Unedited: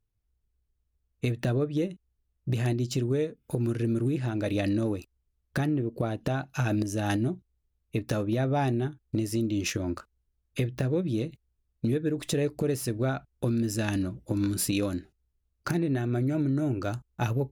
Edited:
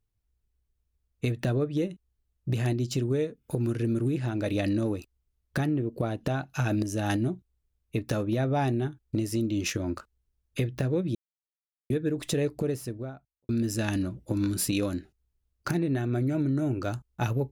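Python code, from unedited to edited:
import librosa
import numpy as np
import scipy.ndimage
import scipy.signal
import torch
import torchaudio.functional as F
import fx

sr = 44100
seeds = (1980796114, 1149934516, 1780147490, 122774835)

y = fx.studio_fade_out(x, sr, start_s=12.41, length_s=1.08)
y = fx.edit(y, sr, fx.silence(start_s=11.15, length_s=0.75), tone=tone)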